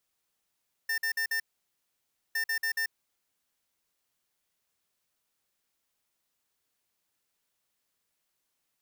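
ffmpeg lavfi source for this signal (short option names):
-f lavfi -i "aevalsrc='0.0335*(2*lt(mod(1800*t,1),0.5)-1)*clip(min(mod(mod(t,1.46),0.14),0.09-mod(mod(t,1.46),0.14))/0.005,0,1)*lt(mod(t,1.46),0.56)':d=2.92:s=44100"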